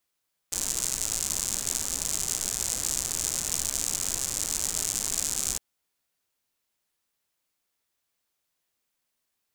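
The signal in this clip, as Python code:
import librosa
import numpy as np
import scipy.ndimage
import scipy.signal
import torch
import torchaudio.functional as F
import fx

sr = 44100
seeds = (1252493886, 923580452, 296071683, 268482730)

y = fx.rain(sr, seeds[0], length_s=5.06, drops_per_s=130.0, hz=7200.0, bed_db=-10.0)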